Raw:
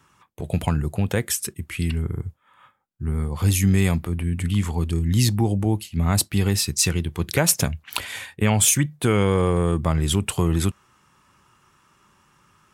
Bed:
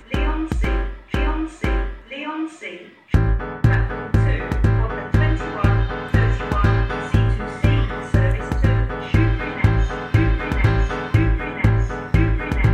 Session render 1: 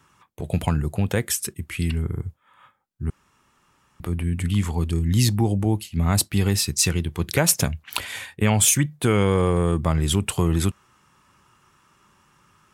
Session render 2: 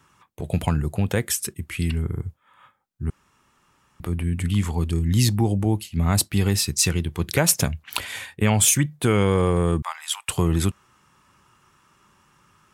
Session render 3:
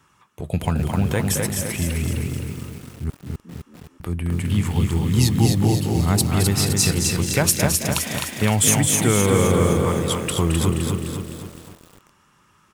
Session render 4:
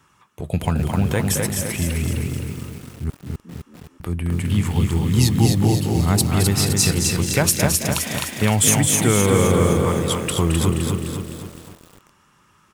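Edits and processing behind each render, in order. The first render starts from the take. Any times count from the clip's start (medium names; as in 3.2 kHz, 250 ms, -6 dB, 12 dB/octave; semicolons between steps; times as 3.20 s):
3.10–4.00 s: room tone
9.82–10.29 s: elliptic high-pass 850 Hz, stop band 60 dB
frequency-shifting echo 218 ms, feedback 42%, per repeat +46 Hz, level -8 dB; bit-crushed delay 258 ms, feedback 55%, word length 7-bit, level -3.5 dB
trim +1 dB; peak limiter -3 dBFS, peak gain reduction 2 dB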